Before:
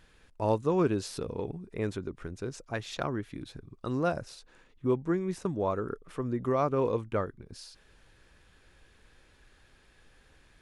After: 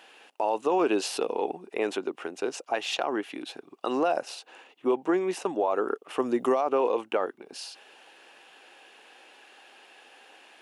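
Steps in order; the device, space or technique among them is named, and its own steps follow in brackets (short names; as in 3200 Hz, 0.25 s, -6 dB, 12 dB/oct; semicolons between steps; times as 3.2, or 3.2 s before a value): laptop speaker (HPF 300 Hz 24 dB/oct; bell 780 Hz +11.5 dB 0.54 oct; bell 2800 Hz +11.5 dB 0.34 oct; limiter -23 dBFS, peak gain reduction 13.5 dB); 6.18–6.61 tone controls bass +7 dB, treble +10 dB; gain +7 dB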